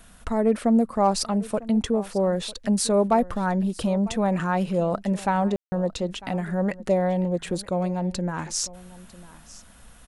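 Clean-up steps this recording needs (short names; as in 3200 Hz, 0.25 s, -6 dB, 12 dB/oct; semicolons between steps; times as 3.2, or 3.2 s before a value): clip repair -11 dBFS; room tone fill 5.56–5.72; inverse comb 0.95 s -19.5 dB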